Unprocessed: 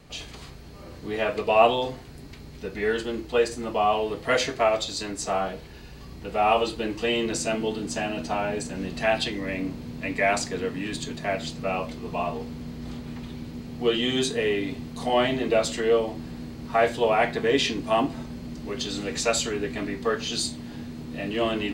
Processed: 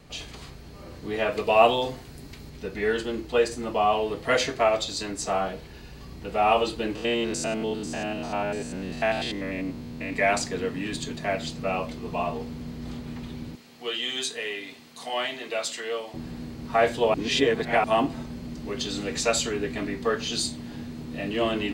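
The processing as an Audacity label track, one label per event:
1.320000	2.500000	high shelf 5500 Hz +5.5 dB
6.950000	10.130000	stepped spectrum every 0.1 s
13.550000	16.140000	HPF 1500 Hz 6 dB/oct
17.140000	17.840000	reverse

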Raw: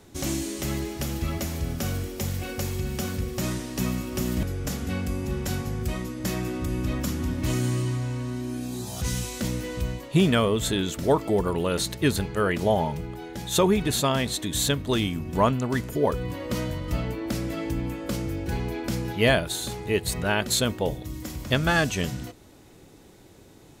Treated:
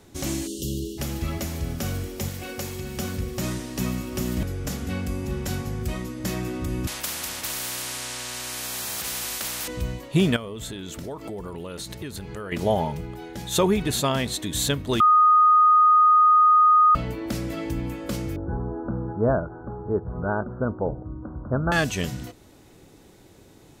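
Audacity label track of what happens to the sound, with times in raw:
0.470000	0.980000	spectral delete 550–2700 Hz
2.280000	2.970000	low shelf 130 Hz -9.5 dB
6.870000	9.680000	spectral compressor 10:1
10.360000	12.520000	compressor, threshold -31 dBFS
15.000000	16.950000	bleep 1240 Hz -12.5 dBFS
18.360000	21.720000	steep low-pass 1500 Hz 96 dB/oct

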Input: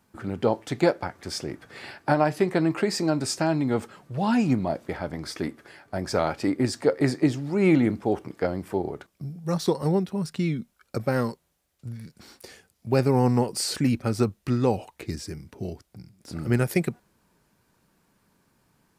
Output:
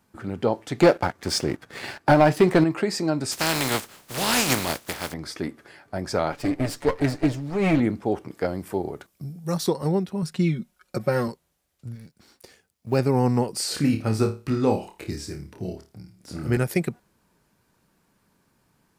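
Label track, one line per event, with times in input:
0.800000	2.640000	sample leveller passes 2
3.310000	5.120000	spectral contrast lowered exponent 0.35
6.320000	7.800000	minimum comb delay 6.9 ms
8.310000	9.680000	high shelf 7200 Hz +9.5 dB
10.220000	11.280000	comb 5.5 ms
11.950000	12.990000	G.711 law mismatch coded by A
13.680000	16.570000	flutter echo walls apart 4.7 m, dies away in 0.3 s

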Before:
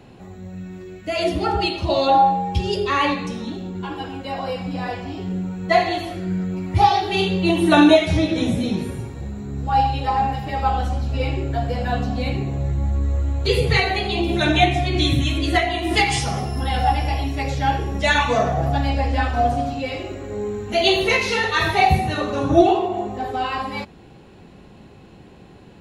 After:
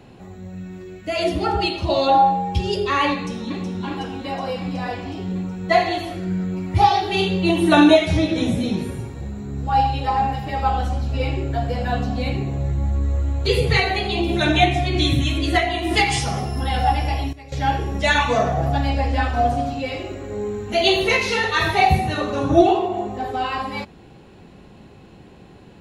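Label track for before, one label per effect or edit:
3.130000	3.610000	echo throw 0.37 s, feedback 75%, level -6.5 dB
17.030000	17.820000	dip -16.5 dB, fades 0.30 s logarithmic

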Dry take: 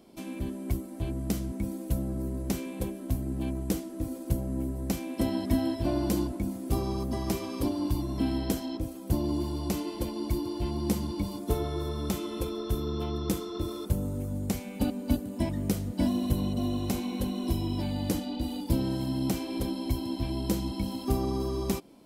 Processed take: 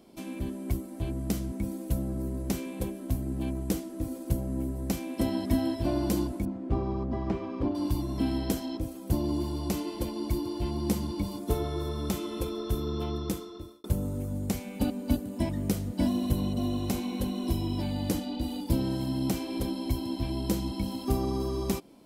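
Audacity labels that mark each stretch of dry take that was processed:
6.450000	7.750000	LPF 1900 Hz
13.120000	13.840000	fade out

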